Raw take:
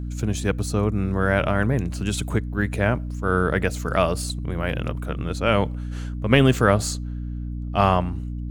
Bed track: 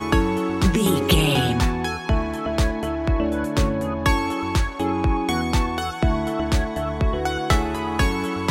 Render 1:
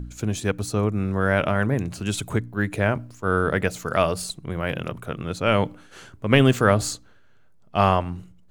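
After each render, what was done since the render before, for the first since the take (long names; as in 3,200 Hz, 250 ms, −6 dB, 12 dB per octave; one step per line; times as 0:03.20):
hum removal 60 Hz, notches 5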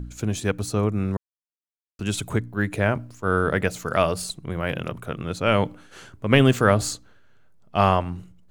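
0:01.17–0:01.99: silence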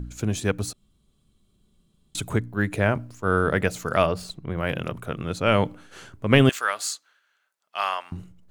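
0:00.73–0:02.15: fill with room tone
0:04.06–0:04.58: parametric band 9,900 Hz −13 dB 1.6 octaves
0:06.49–0:08.12: high-pass filter 1,300 Hz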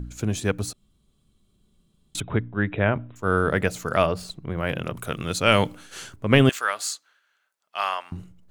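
0:02.20–0:03.16: linear-phase brick-wall low-pass 3,900 Hz
0:04.97–0:06.16: high-shelf EQ 2,600 Hz +12 dB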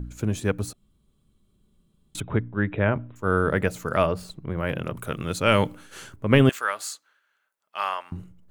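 parametric band 5,000 Hz −6 dB 2.1 octaves
notch filter 710 Hz, Q 12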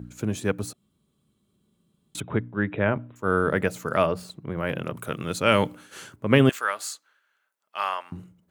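high-pass filter 120 Hz 12 dB per octave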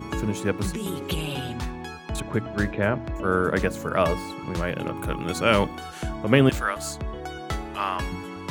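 mix in bed track −11 dB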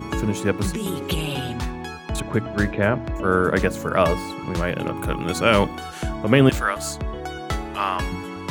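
level +3.5 dB
brickwall limiter −2 dBFS, peak gain reduction 2.5 dB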